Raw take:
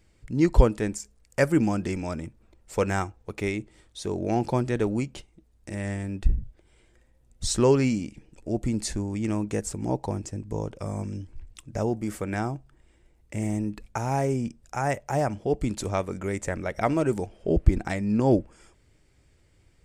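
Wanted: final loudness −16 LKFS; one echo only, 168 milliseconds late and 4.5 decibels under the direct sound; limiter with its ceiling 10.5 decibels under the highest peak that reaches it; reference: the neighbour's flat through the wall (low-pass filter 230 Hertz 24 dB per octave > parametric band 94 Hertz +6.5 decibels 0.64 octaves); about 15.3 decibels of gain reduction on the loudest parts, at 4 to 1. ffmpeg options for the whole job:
ffmpeg -i in.wav -af "acompressor=threshold=-29dB:ratio=4,alimiter=level_in=2.5dB:limit=-24dB:level=0:latency=1,volume=-2.5dB,lowpass=frequency=230:width=0.5412,lowpass=frequency=230:width=1.3066,equalizer=frequency=94:width_type=o:width=0.64:gain=6.5,aecho=1:1:168:0.596,volume=21dB" out.wav

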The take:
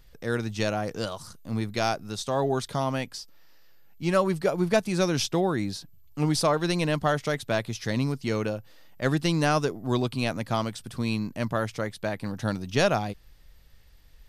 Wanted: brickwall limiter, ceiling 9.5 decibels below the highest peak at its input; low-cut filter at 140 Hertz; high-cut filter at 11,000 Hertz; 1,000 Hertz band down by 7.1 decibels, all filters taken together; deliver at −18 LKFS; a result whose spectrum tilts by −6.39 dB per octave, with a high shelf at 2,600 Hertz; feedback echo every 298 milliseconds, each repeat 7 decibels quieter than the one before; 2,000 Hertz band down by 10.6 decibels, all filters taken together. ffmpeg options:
ffmpeg -i in.wav -af "highpass=140,lowpass=11000,equalizer=frequency=1000:width_type=o:gain=-7,equalizer=frequency=2000:width_type=o:gain=-9,highshelf=frequency=2600:gain=-6.5,alimiter=limit=-23dB:level=0:latency=1,aecho=1:1:298|596|894|1192|1490:0.447|0.201|0.0905|0.0407|0.0183,volume=15.5dB" out.wav

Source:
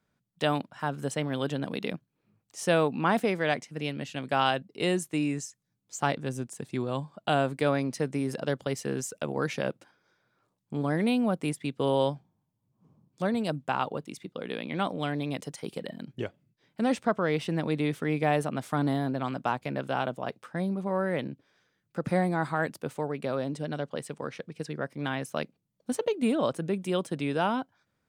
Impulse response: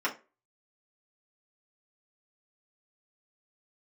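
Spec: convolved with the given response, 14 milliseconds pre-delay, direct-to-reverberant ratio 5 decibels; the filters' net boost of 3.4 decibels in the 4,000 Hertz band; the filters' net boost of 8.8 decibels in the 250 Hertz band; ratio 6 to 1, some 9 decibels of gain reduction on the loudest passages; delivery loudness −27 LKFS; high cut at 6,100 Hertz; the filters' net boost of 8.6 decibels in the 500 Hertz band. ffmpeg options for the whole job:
-filter_complex "[0:a]lowpass=6100,equalizer=frequency=250:width_type=o:gain=8.5,equalizer=frequency=500:width_type=o:gain=8,equalizer=frequency=4000:width_type=o:gain=5,acompressor=threshold=-22dB:ratio=6,asplit=2[link_01][link_02];[1:a]atrim=start_sample=2205,adelay=14[link_03];[link_02][link_03]afir=irnorm=-1:irlink=0,volume=-14dB[link_04];[link_01][link_04]amix=inputs=2:normalize=0,volume=0.5dB"

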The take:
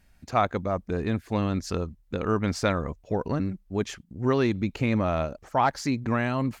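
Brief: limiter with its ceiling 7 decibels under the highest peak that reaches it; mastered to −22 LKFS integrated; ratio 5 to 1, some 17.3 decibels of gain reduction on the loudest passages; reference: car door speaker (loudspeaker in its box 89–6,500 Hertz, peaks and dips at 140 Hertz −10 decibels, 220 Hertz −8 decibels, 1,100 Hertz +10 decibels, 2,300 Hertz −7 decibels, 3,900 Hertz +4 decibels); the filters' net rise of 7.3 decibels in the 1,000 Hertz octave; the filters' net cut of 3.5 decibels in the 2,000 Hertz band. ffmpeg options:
ffmpeg -i in.wav -af "equalizer=frequency=1000:width_type=o:gain=5.5,equalizer=frequency=2000:width_type=o:gain=-7,acompressor=threshold=-35dB:ratio=5,alimiter=level_in=6dB:limit=-24dB:level=0:latency=1,volume=-6dB,highpass=89,equalizer=frequency=140:width_type=q:width=4:gain=-10,equalizer=frequency=220:width_type=q:width=4:gain=-8,equalizer=frequency=1100:width_type=q:width=4:gain=10,equalizer=frequency=2300:width_type=q:width=4:gain=-7,equalizer=frequency=3900:width_type=q:width=4:gain=4,lowpass=frequency=6500:width=0.5412,lowpass=frequency=6500:width=1.3066,volume=19.5dB" out.wav

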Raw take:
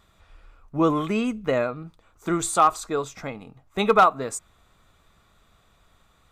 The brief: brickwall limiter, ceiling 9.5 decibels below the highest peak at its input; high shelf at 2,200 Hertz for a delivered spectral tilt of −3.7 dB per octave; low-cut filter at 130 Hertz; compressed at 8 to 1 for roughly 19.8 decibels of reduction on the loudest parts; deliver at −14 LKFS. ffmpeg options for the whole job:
ffmpeg -i in.wav -af "highpass=130,highshelf=frequency=2200:gain=6.5,acompressor=threshold=-32dB:ratio=8,volume=26dB,alimiter=limit=-3.5dB:level=0:latency=1" out.wav

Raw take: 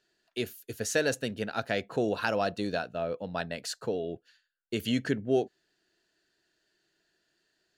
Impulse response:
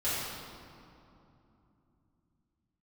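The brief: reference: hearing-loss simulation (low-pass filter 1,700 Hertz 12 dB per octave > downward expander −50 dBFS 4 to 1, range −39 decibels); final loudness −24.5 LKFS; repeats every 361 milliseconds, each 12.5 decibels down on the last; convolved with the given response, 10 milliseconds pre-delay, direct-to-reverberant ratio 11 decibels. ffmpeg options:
-filter_complex "[0:a]aecho=1:1:361|722|1083:0.237|0.0569|0.0137,asplit=2[link_01][link_02];[1:a]atrim=start_sample=2205,adelay=10[link_03];[link_02][link_03]afir=irnorm=-1:irlink=0,volume=-20dB[link_04];[link_01][link_04]amix=inputs=2:normalize=0,lowpass=1700,agate=range=-39dB:threshold=-50dB:ratio=4,volume=8dB"

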